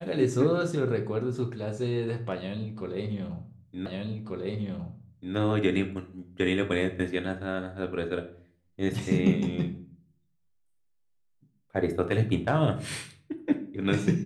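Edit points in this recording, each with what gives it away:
3.86 s: repeat of the last 1.49 s

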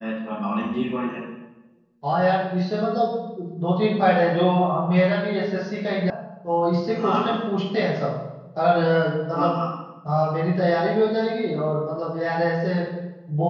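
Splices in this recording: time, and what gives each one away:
6.10 s: sound stops dead

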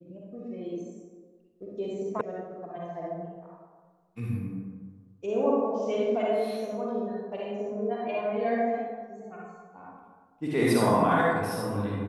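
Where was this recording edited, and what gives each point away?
2.21 s: sound stops dead

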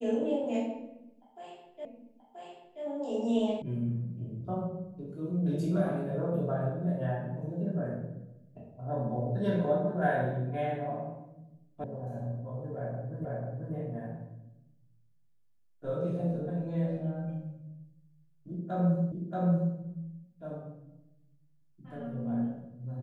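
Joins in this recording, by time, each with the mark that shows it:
1.85 s: repeat of the last 0.98 s
3.62 s: sound stops dead
11.84 s: sound stops dead
13.25 s: repeat of the last 0.49 s
19.12 s: repeat of the last 0.63 s

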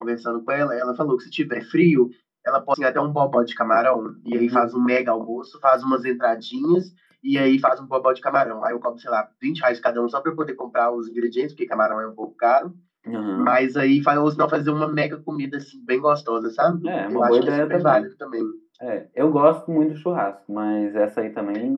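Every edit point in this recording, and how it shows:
2.74 s: sound stops dead

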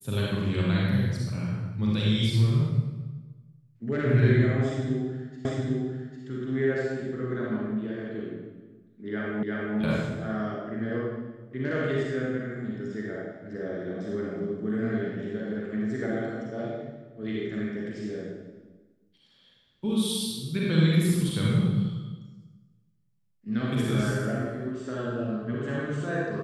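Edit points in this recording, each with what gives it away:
5.45 s: repeat of the last 0.8 s
9.43 s: repeat of the last 0.35 s

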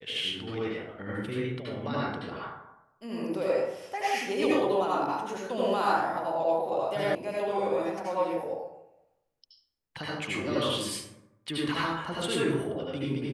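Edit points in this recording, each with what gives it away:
7.15 s: sound stops dead

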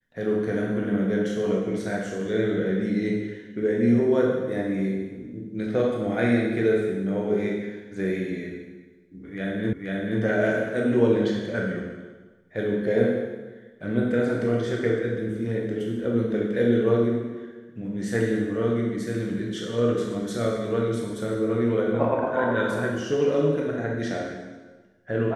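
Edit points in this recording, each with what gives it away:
9.73 s: repeat of the last 0.48 s

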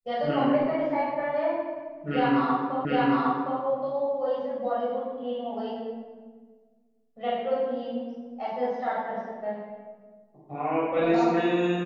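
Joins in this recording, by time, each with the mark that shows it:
2.85 s: repeat of the last 0.76 s

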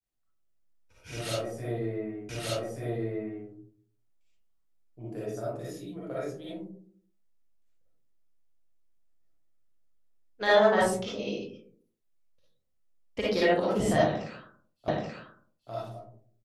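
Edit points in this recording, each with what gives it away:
2.29 s: repeat of the last 1.18 s
14.88 s: repeat of the last 0.83 s

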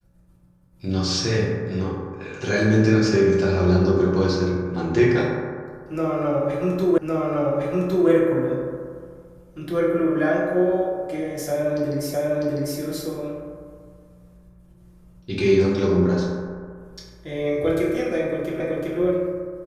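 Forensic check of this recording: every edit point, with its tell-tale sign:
6.98 s: repeat of the last 1.11 s
12.14 s: repeat of the last 0.65 s
18.60 s: repeat of the last 0.38 s

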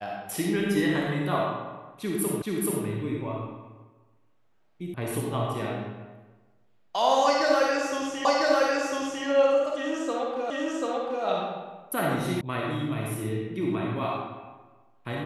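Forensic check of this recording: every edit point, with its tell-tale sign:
2.42 s: repeat of the last 0.43 s
4.94 s: sound stops dead
8.25 s: repeat of the last 1 s
10.50 s: repeat of the last 0.74 s
12.41 s: sound stops dead

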